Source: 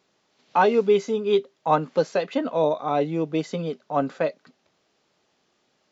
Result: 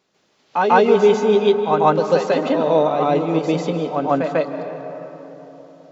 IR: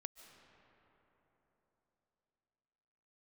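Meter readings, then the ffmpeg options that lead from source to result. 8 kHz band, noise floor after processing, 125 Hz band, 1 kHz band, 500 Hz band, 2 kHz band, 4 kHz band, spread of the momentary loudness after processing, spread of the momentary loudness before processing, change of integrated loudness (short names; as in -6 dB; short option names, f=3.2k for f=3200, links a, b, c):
n/a, -63 dBFS, +6.5 dB, +6.5 dB, +6.5 dB, +6.5 dB, +6.0 dB, 15 LU, 7 LU, +6.5 dB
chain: -filter_complex "[0:a]asplit=2[a][b];[1:a]atrim=start_sample=2205,adelay=145[c];[b][c]afir=irnorm=-1:irlink=0,volume=10dB[d];[a][d]amix=inputs=2:normalize=0"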